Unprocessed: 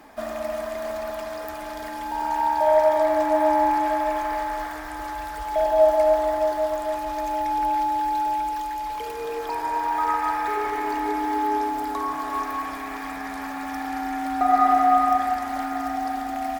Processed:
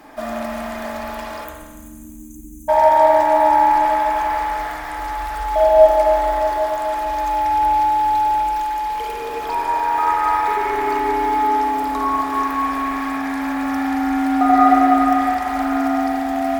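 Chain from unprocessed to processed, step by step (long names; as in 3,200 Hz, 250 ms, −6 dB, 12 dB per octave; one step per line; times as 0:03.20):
time-frequency box erased 0:01.44–0:02.69, 330–6,000 Hz
delay with a high-pass on its return 144 ms, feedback 76%, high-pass 2,600 Hz, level −21 dB
spring reverb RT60 1.3 s, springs 44 ms, chirp 40 ms, DRR −1 dB
level +3.5 dB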